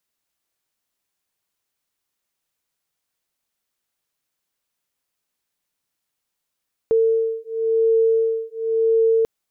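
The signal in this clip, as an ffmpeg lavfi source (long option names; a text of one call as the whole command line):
ffmpeg -f lavfi -i "aevalsrc='0.112*(sin(2*PI*450*t)+sin(2*PI*450.94*t))':duration=2.34:sample_rate=44100" out.wav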